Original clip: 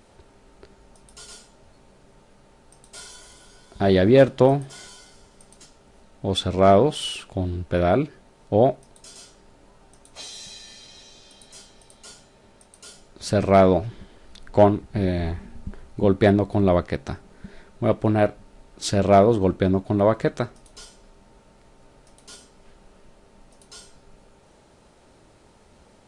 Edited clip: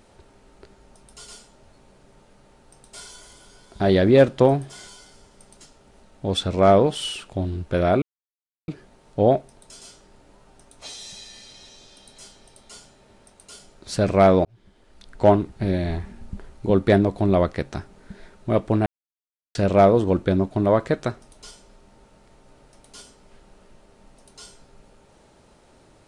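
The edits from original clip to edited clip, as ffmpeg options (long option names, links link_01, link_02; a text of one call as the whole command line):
ffmpeg -i in.wav -filter_complex "[0:a]asplit=5[link_01][link_02][link_03][link_04][link_05];[link_01]atrim=end=8.02,asetpts=PTS-STARTPTS,afade=type=out:start_time=8.016:duration=0.004:curve=hsin,apad=pad_dur=0.66[link_06];[link_02]atrim=start=8.02:end=13.79,asetpts=PTS-STARTPTS,afade=type=in:duration=0.004:curve=hsin,afade=type=out:start_time=5.766:duration=0.004:curve=hsin[link_07];[link_03]atrim=start=13.79:end=18.2,asetpts=PTS-STARTPTS,afade=type=in:duration=0.86,afade=type=out:start_time=4.406:duration=0.004:curve=hsin[link_08];[link_04]atrim=start=18.2:end=18.89,asetpts=PTS-STARTPTS,volume=0[link_09];[link_05]atrim=start=18.89,asetpts=PTS-STARTPTS,afade=type=in:duration=0.004:curve=hsin[link_10];[link_06][link_07][link_08][link_09][link_10]concat=n=5:v=0:a=1" out.wav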